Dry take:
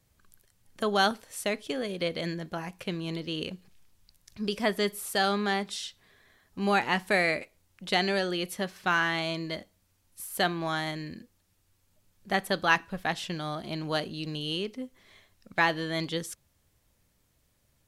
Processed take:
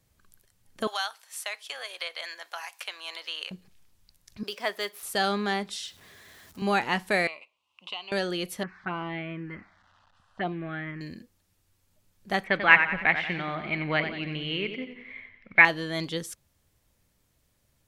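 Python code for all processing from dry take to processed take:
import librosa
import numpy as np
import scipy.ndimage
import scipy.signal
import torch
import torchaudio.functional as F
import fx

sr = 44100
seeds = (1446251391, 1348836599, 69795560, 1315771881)

y = fx.chain(x, sr, fx.highpass(hz=810.0, slope=24),
    fx.band_squash(depth_pct=70), at=(0.87, 3.51))
y = fx.chain(y, sr, fx.median_filter(points=5),
    fx.highpass(hz=600.0, slope=12), at=(4.43, 5.03))
y = fx.chain(y, sr, fx.zero_step(step_db=-51.0),
    fx.highpass(hz=49.0, slope=12),
    fx.band_squash(depth_pct=40), at=(5.85, 6.62))
y = fx.chain(y, sr, fx.double_bandpass(hz=1700.0, octaves=1.4),
    fx.band_squash(depth_pct=70), at=(7.27, 8.12))
y = fx.chain(y, sr, fx.crossing_spikes(level_db=-27.5),
    fx.lowpass(hz=2300.0, slope=24),
    fx.env_phaser(low_hz=370.0, high_hz=1700.0, full_db=-22.5), at=(8.63, 11.01))
y = fx.chain(y, sr, fx.lowpass_res(hz=2200.0, q=9.6),
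    fx.echo_warbled(ms=90, feedback_pct=49, rate_hz=2.8, cents=59, wet_db=-9.0), at=(12.44, 15.65))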